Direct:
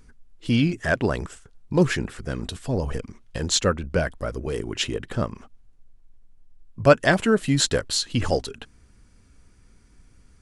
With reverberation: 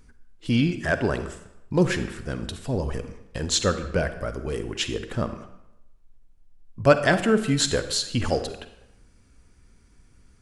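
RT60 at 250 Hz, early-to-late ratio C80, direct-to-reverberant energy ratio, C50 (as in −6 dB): 0.80 s, 12.5 dB, 9.5 dB, 10.5 dB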